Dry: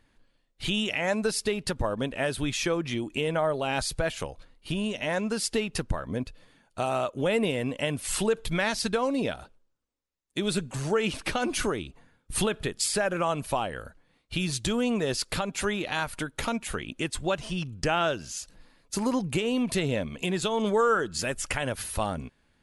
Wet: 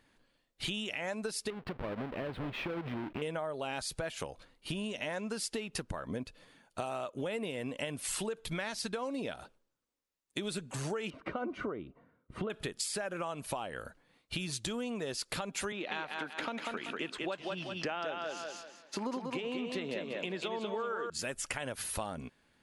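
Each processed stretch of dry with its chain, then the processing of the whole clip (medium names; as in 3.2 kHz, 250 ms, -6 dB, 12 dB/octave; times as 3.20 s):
1.50–3.22 s: square wave that keeps the level + distance through air 460 m + compression 3:1, threshold -33 dBFS
11.10–12.50 s: low-pass 1.3 kHz + comb of notches 850 Hz
15.72–21.10 s: three-band isolator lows -21 dB, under 170 Hz, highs -20 dB, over 4.7 kHz + thinning echo 192 ms, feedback 31%, high-pass 200 Hz, level -4 dB
whole clip: bass shelf 93 Hz -12 dB; compression, threshold -34 dBFS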